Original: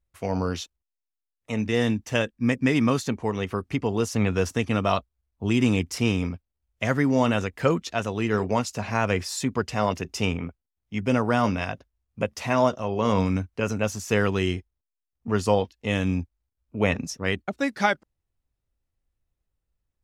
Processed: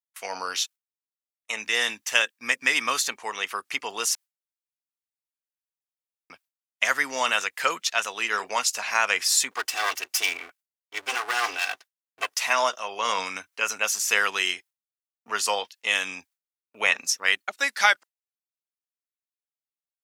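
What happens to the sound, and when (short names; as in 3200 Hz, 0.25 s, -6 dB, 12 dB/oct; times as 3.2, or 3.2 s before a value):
4.15–6.3 room tone
9.51–12.36 minimum comb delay 2.6 ms
whole clip: gate with hold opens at -40 dBFS; HPF 1300 Hz 12 dB/oct; high shelf 6500 Hz +7 dB; gain +7.5 dB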